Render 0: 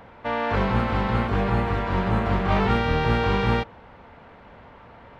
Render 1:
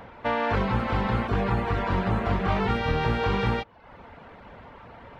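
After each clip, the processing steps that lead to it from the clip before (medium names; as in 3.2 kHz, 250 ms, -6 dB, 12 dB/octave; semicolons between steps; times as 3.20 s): reverb removal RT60 0.56 s; compression, threshold -23 dBFS, peak gain reduction 6.5 dB; trim +2.5 dB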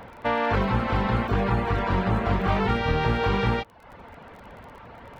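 crackle 28 per s -42 dBFS; trim +1.5 dB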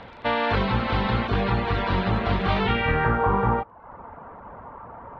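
low-pass sweep 4 kHz -> 1.1 kHz, 2.59–3.25 s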